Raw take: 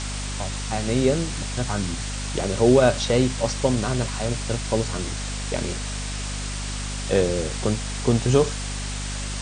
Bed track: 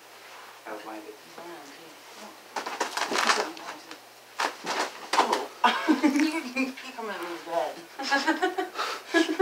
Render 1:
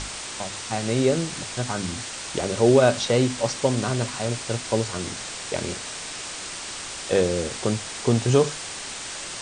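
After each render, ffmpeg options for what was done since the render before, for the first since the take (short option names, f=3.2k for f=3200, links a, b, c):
-af "bandreject=f=50:t=h:w=6,bandreject=f=100:t=h:w=6,bandreject=f=150:t=h:w=6,bandreject=f=200:t=h:w=6,bandreject=f=250:t=h:w=6"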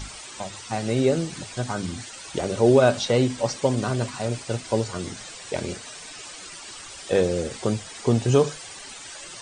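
-af "afftdn=nr=12:nf=-35"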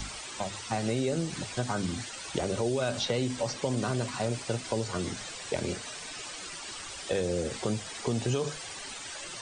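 -filter_complex "[0:a]acrossover=split=1800[a][b];[a]alimiter=limit=-15.5dB:level=0:latency=1[c];[c][b]amix=inputs=2:normalize=0,acrossover=split=130|5200[d][e][f];[d]acompressor=threshold=-39dB:ratio=4[g];[e]acompressor=threshold=-27dB:ratio=4[h];[f]acompressor=threshold=-44dB:ratio=4[i];[g][h][i]amix=inputs=3:normalize=0"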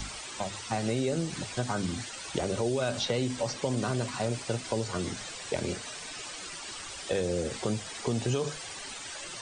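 -af anull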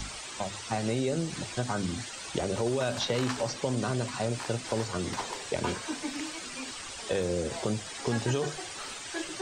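-filter_complex "[1:a]volume=-14dB[a];[0:a][a]amix=inputs=2:normalize=0"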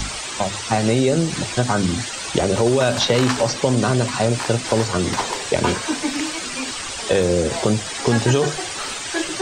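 -af "volume=12dB"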